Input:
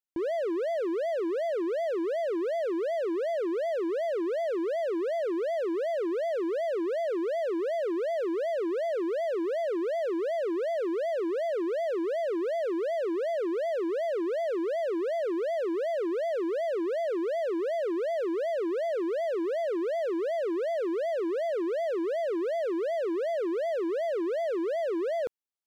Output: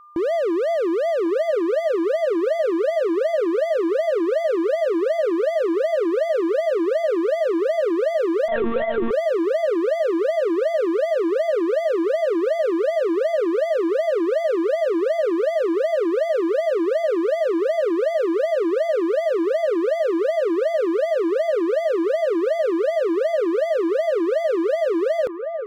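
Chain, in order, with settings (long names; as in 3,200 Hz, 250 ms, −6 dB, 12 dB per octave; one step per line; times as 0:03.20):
steady tone 1,200 Hz −53 dBFS
on a send: delay with a band-pass on its return 1,101 ms, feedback 35%, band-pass 870 Hz, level −6 dB
0:08.48–0:09.11: on the sum: one-pitch LPC vocoder at 8 kHz 230 Hz
level +8.5 dB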